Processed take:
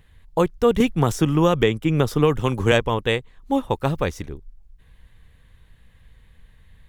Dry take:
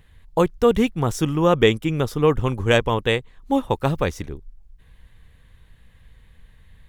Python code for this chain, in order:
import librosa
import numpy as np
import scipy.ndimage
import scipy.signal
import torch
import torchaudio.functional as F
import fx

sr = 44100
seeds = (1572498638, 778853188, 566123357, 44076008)

y = fx.band_squash(x, sr, depth_pct=100, at=(0.8, 2.72))
y = y * 10.0 ** (-1.0 / 20.0)